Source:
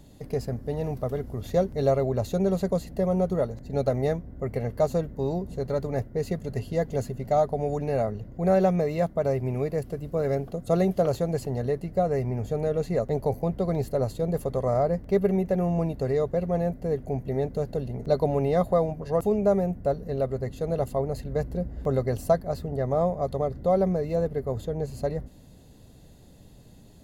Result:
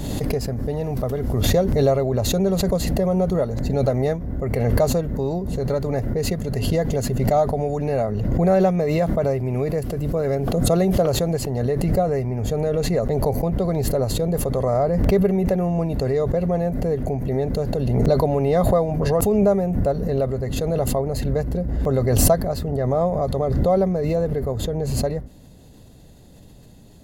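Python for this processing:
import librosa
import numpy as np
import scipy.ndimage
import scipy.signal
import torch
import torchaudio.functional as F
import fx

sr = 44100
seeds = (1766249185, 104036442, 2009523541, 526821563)

y = fx.pre_swell(x, sr, db_per_s=24.0)
y = y * 10.0 ** (3.5 / 20.0)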